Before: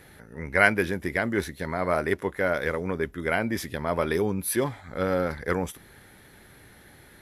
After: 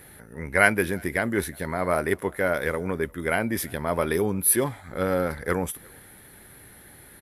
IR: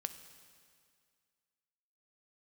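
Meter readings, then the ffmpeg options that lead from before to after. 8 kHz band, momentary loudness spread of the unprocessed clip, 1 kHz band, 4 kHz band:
+9.0 dB, 10 LU, +1.0 dB, 0.0 dB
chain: -filter_complex "[0:a]highshelf=frequency=7800:width_type=q:width=1.5:gain=7,asplit=2[link_01][link_02];[link_02]adelay=350,highpass=300,lowpass=3400,asoftclip=type=hard:threshold=-12dB,volume=-27dB[link_03];[link_01][link_03]amix=inputs=2:normalize=0,volume=1dB"

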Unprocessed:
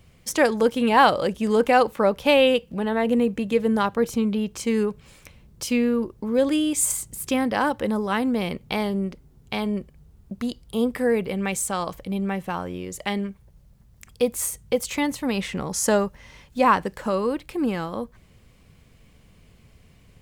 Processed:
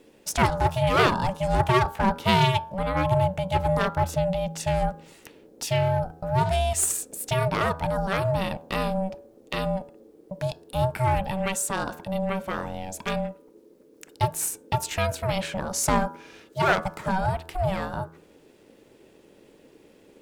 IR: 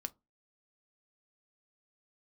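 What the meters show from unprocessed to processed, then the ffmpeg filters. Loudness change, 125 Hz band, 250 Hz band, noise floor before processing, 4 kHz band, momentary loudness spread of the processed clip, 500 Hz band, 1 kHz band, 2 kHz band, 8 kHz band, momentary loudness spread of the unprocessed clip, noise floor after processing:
−2.5 dB, +9.0 dB, −7.5 dB, −55 dBFS, −1.0 dB, 11 LU, −4.0 dB, 0.0 dB, −1.5 dB, −1.5 dB, 12 LU, −56 dBFS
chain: -af "aeval=exprs='clip(val(0),-1,0.112)':channel_layout=same,aeval=exprs='val(0)*sin(2*PI*380*n/s)':channel_layout=same,bandreject=frequency=81.42:width_type=h:width=4,bandreject=frequency=162.84:width_type=h:width=4,bandreject=frequency=244.26:width_type=h:width=4,bandreject=frequency=325.68:width_type=h:width=4,bandreject=frequency=407.1:width_type=h:width=4,bandreject=frequency=488.52:width_type=h:width=4,bandreject=frequency=569.94:width_type=h:width=4,bandreject=frequency=651.36:width_type=h:width=4,bandreject=frequency=732.78:width_type=h:width=4,bandreject=frequency=814.2:width_type=h:width=4,bandreject=frequency=895.62:width_type=h:width=4,bandreject=frequency=977.04:width_type=h:width=4,bandreject=frequency=1058.46:width_type=h:width=4,bandreject=frequency=1139.88:width_type=h:width=4,bandreject=frequency=1221.3:width_type=h:width=4,bandreject=frequency=1302.72:width_type=h:width=4,bandreject=frequency=1384.14:width_type=h:width=4,bandreject=frequency=1465.56:width_type=h:width=4,bandreject=frequency=1546.98:width_type=h:width=4,bandreject=frequency=1628.4:width_type=h:width=4,bandreject=frequency=1709.82:width_type=h:width=4,volume=2dB"

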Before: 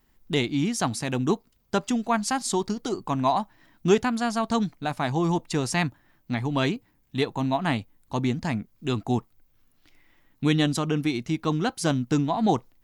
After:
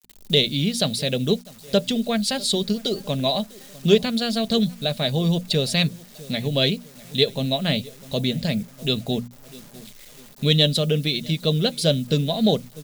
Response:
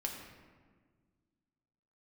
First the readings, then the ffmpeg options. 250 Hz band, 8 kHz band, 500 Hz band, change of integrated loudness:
+1.5 dB, +1.5 dB, +5.0 dB, +4.0 dB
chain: -filter_complex "[0:a]firequalizer=gain_entry='entry(100,0);entry(150,3);entry(340,-10);entry(530,7);entry(870,-21);entry(1600,-10);entry(3800,5);entry(6000,-18);entry(11000,-12)':delay=0.05:min_phase=1,acontrast=36,asplit=2[link_01][link_02];[link_02]adelay=649,lowpass=frequency=2300:poles=1,volume=-23dB,asplit=2[link_03][link_04];[link_04]adelay=649,lowpass=frequency=2300:poles=1,volume=0.47,asplit=2[link_05][link_06];[link_06]adelay=649,lowpass=frequency=2300:poles=1,volume=0.47[link_07];[link_03][link_05][link_07]amix=inputs=3:normalize=0[link_08];[link_01][link_08]amix=inputs=2:normalize=0,acrusher=bits=8:mix=0:aa=0.000001,bass=frequency=250:gain=-4,treble=frequency=4000:gain=10,asplit=2[link_09][link_10];[link_10]acompressor=threshold=-35dB:ratio=6,volume=-3dB[link_11];[link_09][link_11]amix=inputs=2:normalize=0,bandreject=frequency=60:width_type=h:width=6,bandreject=frequency=120:width_type=h:width=6,bandreject=frequency=180:width_type=h:width=6,bandreject=frequency=240:width_type=h:width=6,aecho=1:1:4.9:0.34"

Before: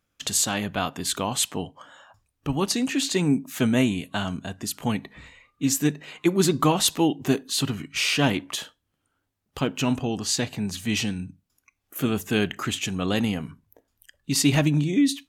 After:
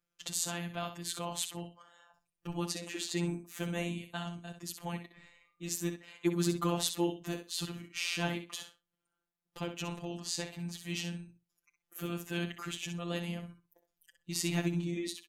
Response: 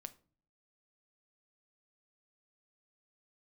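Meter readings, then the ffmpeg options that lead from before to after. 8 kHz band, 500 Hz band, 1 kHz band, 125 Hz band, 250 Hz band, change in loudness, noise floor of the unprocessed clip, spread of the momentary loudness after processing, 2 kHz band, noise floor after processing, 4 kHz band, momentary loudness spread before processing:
−11.5 dB, −11.0 dB, −12.0 dB, −11.0 dB, −13.0 dB, −12.0 dB, −77 dBFS, 12 LU, −11.0 dB, below −85 dBFS, −11.5 dB, 11 LU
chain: -af "aecho=1:1:63|126:0.355|0.0568,afftfilt=real='hypot(re,im)*cos(PI*b)':imag='0':win_size=1024:overlap=0.75,volume=-8.5dB"

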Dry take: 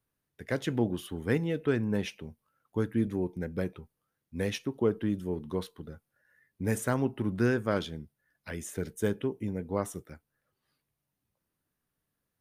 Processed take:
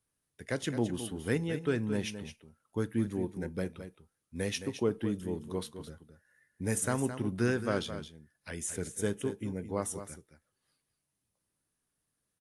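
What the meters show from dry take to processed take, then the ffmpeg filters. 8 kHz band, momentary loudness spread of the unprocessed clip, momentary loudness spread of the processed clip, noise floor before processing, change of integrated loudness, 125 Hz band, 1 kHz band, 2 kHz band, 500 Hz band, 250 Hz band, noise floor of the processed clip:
+6.0 dB, 15 LU, 16 LU, −85 dBFS, −2.5 dB, −2.5 dB, −2.5 dB, −1.5 dB, −2.5 dB, −2.5 dB, −84 dBFS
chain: -af "aemphasis=mode=production:type=50kf,aecho=1:1:216:0.299,volume=-3dB" -ar 24000 -c:a aac -b:a 64k

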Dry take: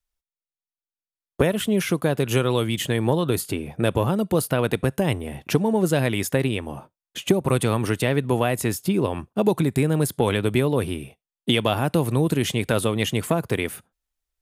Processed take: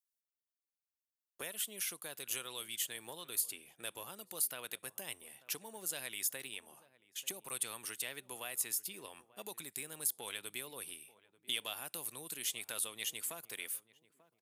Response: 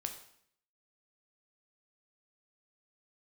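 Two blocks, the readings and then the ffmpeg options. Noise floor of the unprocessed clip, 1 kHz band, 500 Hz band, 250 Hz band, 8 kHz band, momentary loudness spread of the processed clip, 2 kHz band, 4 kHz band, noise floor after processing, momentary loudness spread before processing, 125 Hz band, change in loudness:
below −85 dBFS, −23.0 dB, −29.0 dB, −34.0 dB, −4.0 dB, 11 LU, −16.0 dB, −12.0 dB, below −85 dBFS, 6 LU, −39.5 dB, −16.5 dB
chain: -filter_complex "[0:a]aderivative,asplit=2[link_01][link_02];[link_02]adelay=889,lowpass=frequency=1000:poles=1,volume=-18dB,asplit=2[link_03][link_04];[link_04]adelay=889,lowpass=frequency=1000:poles=1,volume=0.41,asplit=2[link_05][link_06];[link_06]adelay=889,lowpass=frequency=1000:poles=1,volume=0.41[link_07];[link_01][link_03][link_05][link_07]amix=inputs=4:normalize=0,volume=-5.5dB"

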